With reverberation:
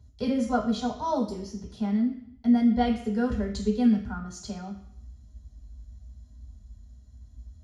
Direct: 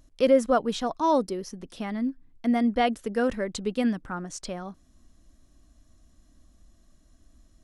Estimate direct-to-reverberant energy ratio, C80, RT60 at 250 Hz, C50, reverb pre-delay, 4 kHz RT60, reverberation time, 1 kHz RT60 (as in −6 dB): −1.5 dB, 10.5 dB, 0.65 s, 8.0 dB, 3 ms, 0.70 s, 0.70 s, 0.70 s